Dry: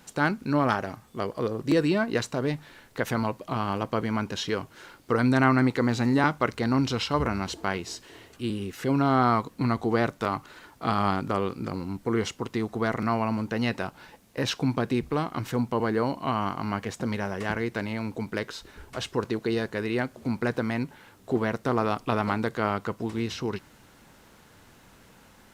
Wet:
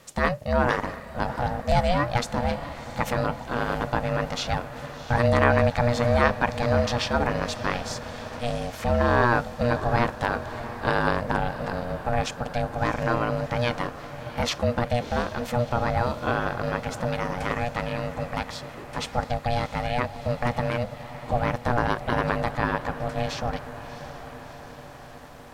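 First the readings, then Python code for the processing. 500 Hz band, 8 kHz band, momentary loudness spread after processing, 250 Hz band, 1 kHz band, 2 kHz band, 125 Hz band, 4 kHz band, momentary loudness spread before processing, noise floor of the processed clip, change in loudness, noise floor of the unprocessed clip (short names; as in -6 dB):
+3.0 dB, +2.0 dB, 13 LU, -3.5 dB, +3.0 dB, +3.5 dB, +3.0 dB, +2.0 dB, 10 LU, -42 dBFS, +1.5 dB, -56 dBFS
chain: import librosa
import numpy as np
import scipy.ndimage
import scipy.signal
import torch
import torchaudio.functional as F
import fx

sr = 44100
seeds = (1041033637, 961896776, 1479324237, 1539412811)

y = fx.echo_diffused(x, sr, ms=688, feedback_pct=65, wet_db=-13)
y = y * np.sin(2.0 * np.pi * 360.0 * np.arange(len(y)) / sr)
y = y * librosa.db_to_amplitude(4.5)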